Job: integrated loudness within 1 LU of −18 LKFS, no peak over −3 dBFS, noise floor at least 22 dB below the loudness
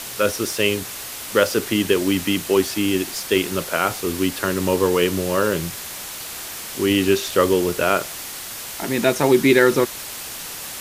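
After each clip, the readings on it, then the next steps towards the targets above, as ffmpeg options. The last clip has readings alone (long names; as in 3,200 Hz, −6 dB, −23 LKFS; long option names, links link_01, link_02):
background noise floor −33 dBFS; target noise floor −43 dBFS; integrated loudness −20.5 LKFS; sample peak −1.0 dBFS; target loudness −18.0 LKFS
→ -af "afftdn=noise_reduction=10:noise_floor=-33"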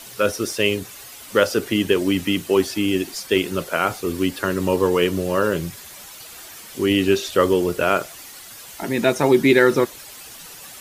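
background noise floor −40 dBFS; target noise floor −42 dBFS
→ -af "afftdn=noise_reduction=6:noise_floor=-40"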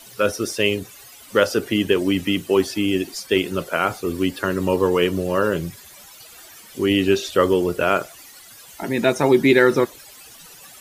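background noise floor −44 dBFS; integrated loudness −20.0 LKFS; sample peak −1.5 dBFS; target loudness −18.0 LKFS
→ -af "volume=2dB,alimiter=limit=-3dB:level=0:latency=1"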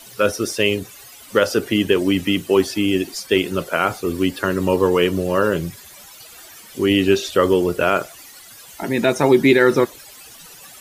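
integrated loudness −18.5 LKFS; sample peak −3.0 dBFS; background noise floor −42 dBFS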